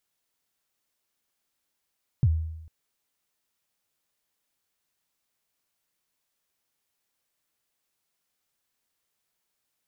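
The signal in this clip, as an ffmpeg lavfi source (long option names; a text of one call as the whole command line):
ffmpeg -f lavfi -i "aevalsrc='0.178*pow(10,-3*t/0.9)*sin(2*PI*(150*0.049/log(80/150)*(exp(log(80/150)*min(t,0.049)/0.049)-1)+80*max(t-0.049,0)))':duration=0.45:sample_rate=44100" out.wav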